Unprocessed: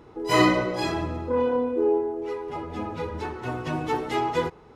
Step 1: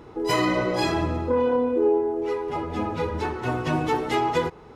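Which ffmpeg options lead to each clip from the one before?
-af "alimiter=limit=0.133:level=0:latency=1:release=234,volume=1.68"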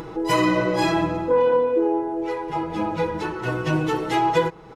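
-af "aecho=1:1:6.1:0.68,acompressor=mode=upward:threshold=0.0398:ratio=2.5"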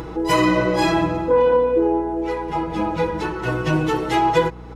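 -af "aeval=exprs='val(0)+0.0112*(sin(2*PI*60*n/s)+sin(2*PI*2*60*n/s)/2+sin(2*PI*3*60*n/s)/3+sin(2*PI*4*60*n/s)/4+sin(2*PI*5*60*n/s)/5)':c=same,volume=1.33"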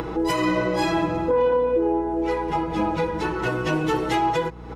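-filter_complex "[0:a]acrossover=split=170|3800[s0][s1][s2];[s0]aeval=exprs='0.0376*(abs(mod(val(0)/0.0376+3,4)-2)-1)':c=same[s3];[s1]acompressor=mode=upward:threshold=0.0631:ratio=2.5[s4];[s3][s4][s2]amix=inputs=3:normalize=0,alimiter=limit=0.2:level=0:latency=1:release=431,volume=1.12"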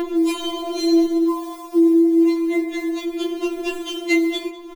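-af "aecho=1:1:196|392|588:0.1|0.035|0.0123,acrusher=bits=8:mode=log:mix=0:aa=0.000001,afftfilt=real='re*4*eq(mod(b,16),0)':imag='im*4*eq(mod(b,16),0)':win_size=2048:overlap=0.75,volume=2.24"

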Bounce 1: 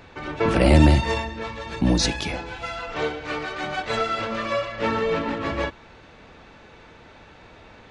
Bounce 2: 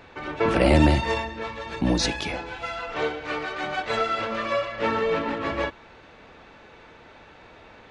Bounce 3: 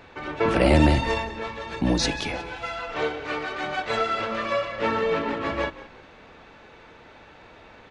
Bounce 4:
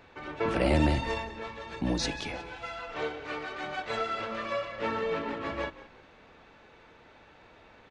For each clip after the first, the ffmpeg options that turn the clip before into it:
-af "bass=f=250:g=-5,treble=f=4000:g=-4"
-filter_complex "[0:a]asplit=4[s0][s1][s2][s3];[s1]adelay=179,afreqshift=-33,volume=0.141[s4];[s2]adelay=358,afreqshift=-66,volume=0.0437[s5];[s3]adelay=537,afreqshift=-99,volume=0.0136[s6];[s0][s4][s5][s6]amix=inputs=4:normalize=0"
-af "aresample=22050,aresample=44100,volume=0.447"

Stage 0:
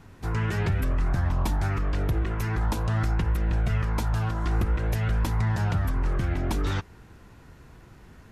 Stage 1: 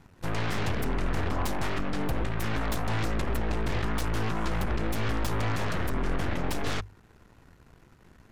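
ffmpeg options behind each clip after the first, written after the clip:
-af "aeval=exprs='0.158*(cos(1*acos(clip(val(0)/0.158,-1,1)))-cos(1*PI/2))+0.0708*(cos(8*acos(clip(val(0)/0.158,-1,1)))-cos(8*PI/2))':c=same,bandreject=f=50:t=h:w=6,bandreject=f=100:t=h:w=6,volume=0.447"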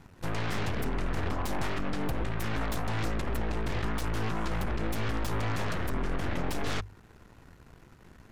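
-af "alimiter=level_in=1.06:limit=0.0631:level=0:latency=1:release=121,volume=0.944,volume=1.26"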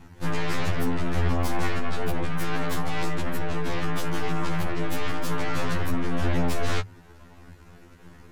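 -af "afftfilt=real='re*2*eq(mod(b,4),0)':imag='im*2*eq(mod(b,4),0)':win_size=2048:overlap=0.75,volume=2.24"

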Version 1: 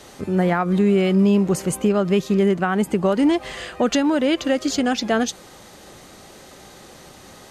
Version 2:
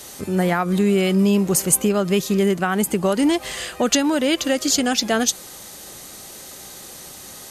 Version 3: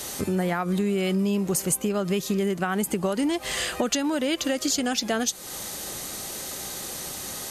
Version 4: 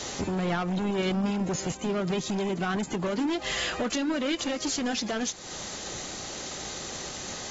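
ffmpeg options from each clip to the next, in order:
-af "aemphasis=mode=production:type=75fm"
-af "acompressor=threshold=0.0398:ratio=4,volume=1.58"
-af "asoftclip=type=hard:threshold=0.0501" -ar 44100 -c:a aac -b:a 24k

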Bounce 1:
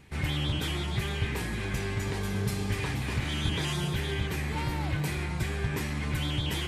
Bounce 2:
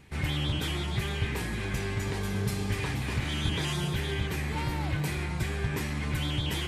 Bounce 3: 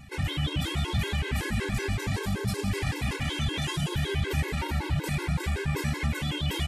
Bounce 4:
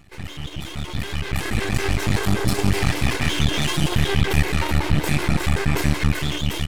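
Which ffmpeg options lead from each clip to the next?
-af anull
-af "alimiter=level_in=1.41:limit=0.0631:level=0:latency=1:release=30,volume=0.708,aecho=1:1:164|328|492|656|820|984:0.266|0.144|0.0776|0.0419|0.0226|0.0122,afftfilt=real='re*gt(sin(2*PI*5.3*pts/sr)*(1-2*mod(floor(b*sr/1024/280),2)),0)':imag='im*gt(sin(2*PI*5.3*pts/sr)*(1-2*mod(floor(b*sr/1024/280),2)),0)':win_size=1024:overlap=0.75,volume=2.66"
-filter_complex "[0:a]asplit=2[s0][s1];[s1]adelay=219,lowpass=f=2000:p=1,volume=0.0841,asplit=2[s2][s3];[s3]adelay=219,lowpass=f=2000:p=1,volume=0.51,asplit=2[s4][s5];[s5]adelay=219,lowpass=f=2000:p=1,volume=0.51,asplit=2[s6][s7];[s7]adelay=219,lowpass=f=2000:p=1,volume=0.51[s8];[s0][s2][s4][s6][s8]amix=inputs=5:normalize=0,aeval=exprs='max(val(0),0)':c=same,dynaudnorm=f=220:g=13:m=5.01"

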